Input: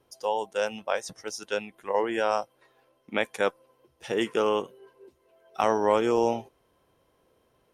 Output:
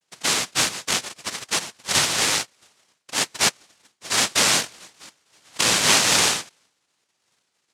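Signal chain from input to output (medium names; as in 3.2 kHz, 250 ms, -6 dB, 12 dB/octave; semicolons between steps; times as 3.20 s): expander -59 dBFS; noise-vocoded speech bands 1; trim +5 dB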